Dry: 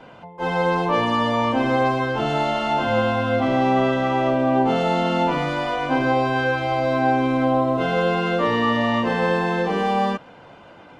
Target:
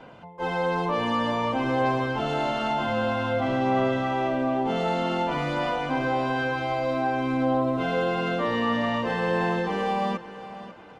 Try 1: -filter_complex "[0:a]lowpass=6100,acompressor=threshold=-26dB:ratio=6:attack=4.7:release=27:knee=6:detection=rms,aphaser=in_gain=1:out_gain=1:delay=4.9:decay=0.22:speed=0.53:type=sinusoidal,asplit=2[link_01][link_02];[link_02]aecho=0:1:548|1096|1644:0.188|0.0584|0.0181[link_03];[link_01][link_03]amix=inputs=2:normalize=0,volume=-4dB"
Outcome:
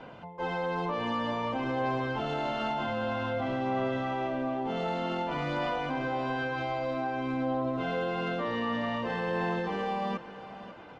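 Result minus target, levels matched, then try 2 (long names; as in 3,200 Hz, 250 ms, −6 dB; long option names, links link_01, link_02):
downward compressor: peak gain reduction +7.5 dB; 8,000 Hz band −3.5 dB
-filter_complex "[0:a]acompressor=threshold=-16.5dB:ratio=6:attack=4.7:release=27:knee=6:detection=rms,aphaser=in_gain=1:out_gain=1:delay=4.9:decay=0.22:speed=0.53:type=sinusoidal,asplit=2[link_01][link_02];[link_02]aecho=0:1:548|1096|1644:0.188|0.0584|0.0181[link_03];[link_01][link_03]amix=inputs=2:normalize=0,volume=-4dB"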